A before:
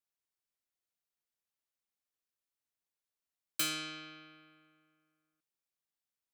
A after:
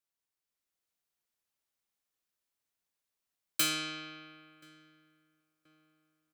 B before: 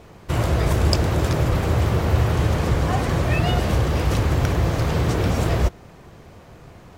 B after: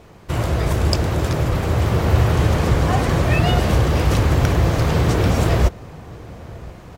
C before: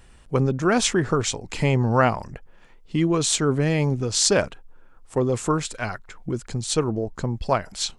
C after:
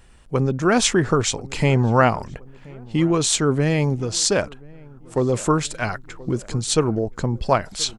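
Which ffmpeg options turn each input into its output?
-filter_complex "[0:a]asplit=2[s0][s1];[s1]adelay=1029,lowpass=f=1400:p=1,volume=0.0794,asplit=2[s2][s3];[s3]adelay=1029,lowpass=f=1400:p=1,volume=0.48,asplit=2[s4][s5];[s5]adelay=1029,lowpass=f=1400:p=1,volume=0.48[s6];[s0][s2][s4][s6]amix=inputs=4:normalize=0,dynaudnorm=f=420:g=3:m=1.58"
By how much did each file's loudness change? +4.0 LU, +2.5 LU, +2.0 LU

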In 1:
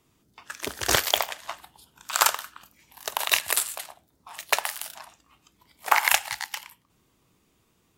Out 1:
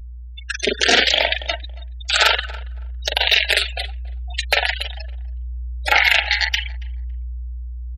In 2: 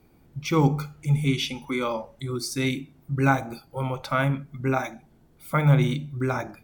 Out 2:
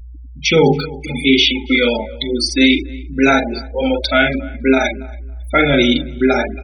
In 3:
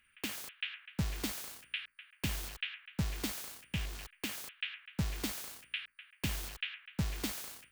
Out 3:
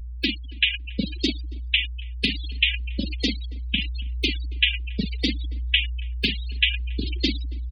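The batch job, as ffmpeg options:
-filter_complex "[0:a]asuperstop=centerf=1100:order=4:qfactor=2.9,acrossover=split=130|3200[s0][s1][s2];[s0]acrusher=bits=2:mix=0:aa=0.5[s3];[s1]asplit=2[s4][s5];[s5]adelay=42,volume=0.631[s6];[s4][s6]amix=inputs=2:normalize=0[s7];[s2]acompressor=threshold=0.00794:ratio=4[s8];[s3][s7][s8]amix=inputs=3:normalize=0,aeval=exprs='val(0)+0.00447*(sin(2*PI*60*n/s)+sin(2*PI*2*60*n/s)/2+sin(2*PI*3*60*n/s)/3+sin(2*PI*4*60*n/s)/4+sin(2*PI*5*60*n/s)/5)':c=same,bandreject=f=277.6:t=h:w=4,bandreject=f=555.2:t=h:w=4,flanger=delay=2.7:depth=2.3:regen=-9:speed=0.71:shape=triangular,equalizer=f=125:t=o:w=1:g=-11,equalizer=f=1000:t=o:w=1:g=-11,equalizer=f=4000:t=o:w=1:g=7,afftfilt=real='re*gte(hypot(re,im),0.0126)':imag='im*gte(hypot(re,im),0.0126)':win_size=1024:overlap=0.75,asubboost=boost=5:cutoff=58,asplit=2[s9][s10];[s10]adelay=278,lowpass=f=1600:p=1,volume=0.0891,asplit=2[s11][s12];[s12]adelay=278,lowpass=f=1600:p=1,volume=0.2[s13];[s11][s13]amix=inputs=2:normalize=0[s14];[s9][s14]amix=inputs=2:normalize=0,alimiter=level_in=10.6:limit=0.891:release=50:level=0:latency=1,volume=0.891"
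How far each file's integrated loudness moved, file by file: +7.5 LU, +10.5 LU, +14.0 LU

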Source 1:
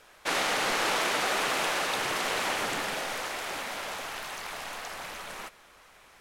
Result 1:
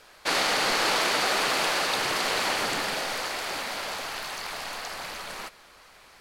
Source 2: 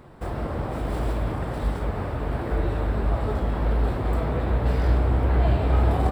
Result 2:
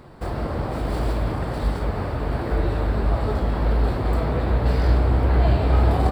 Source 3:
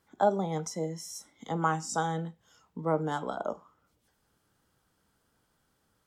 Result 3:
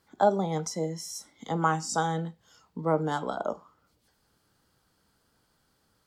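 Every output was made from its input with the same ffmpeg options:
-af "equalizer=f=4500:t=o:w=0.29:g=7.5,volume=1.33"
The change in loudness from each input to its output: +3.5 LU, +2.5 LU, +2.5 LU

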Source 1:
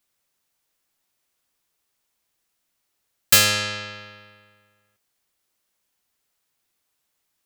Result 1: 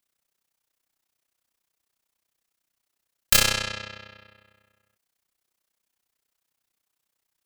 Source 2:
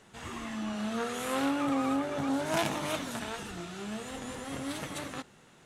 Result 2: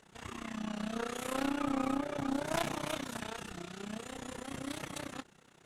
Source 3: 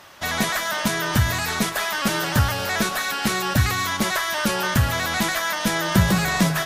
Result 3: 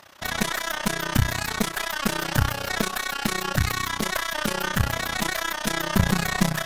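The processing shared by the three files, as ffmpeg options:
-af "aeval=exprs='0.794*(cos(1*acos(clip(val(0)/0.794,-1,1)))-cos(1*PI/2))+0.0631*(cos(8*acos(clip(val(0)/0.794,-1,1)))-cos(8*PI/2))':c=same,tremolo=f=31:d=0.889"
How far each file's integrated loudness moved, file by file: -4.0 LU, -4.0 LU, -3.5 LU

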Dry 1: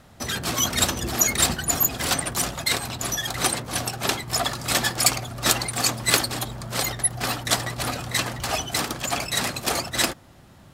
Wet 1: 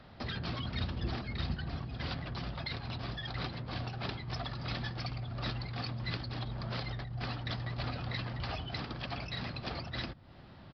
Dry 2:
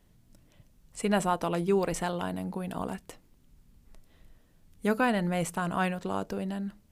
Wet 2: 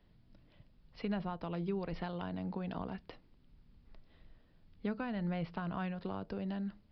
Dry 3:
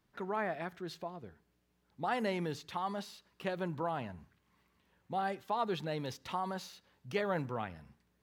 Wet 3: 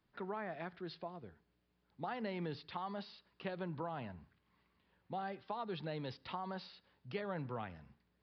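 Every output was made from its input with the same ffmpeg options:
-filter_complex "[0:a]acrossover=split=180[s0][s1];[s1]acompressor=threshold=0.0178:ratio=6[s2];[s0][s2]amix=inputs=2:normalize=0,aresample=11025,aresample=44100,volume=0.708"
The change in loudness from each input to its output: -15.5 LU, -9.0 LU, -6.0 LU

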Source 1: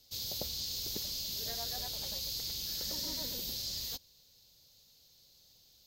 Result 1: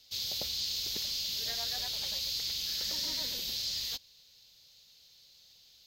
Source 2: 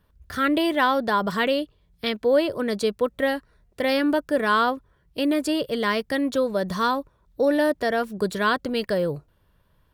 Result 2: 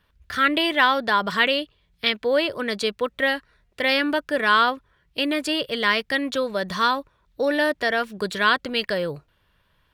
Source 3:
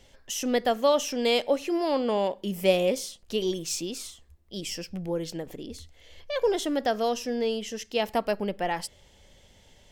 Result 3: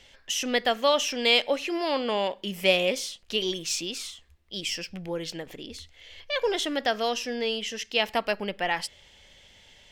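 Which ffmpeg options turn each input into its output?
-af "equalizer=f=2600:t=o:w=2.5:g=12,volume=0.631"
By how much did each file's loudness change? +3.5 LU, +1.5 LU, +1.0 LU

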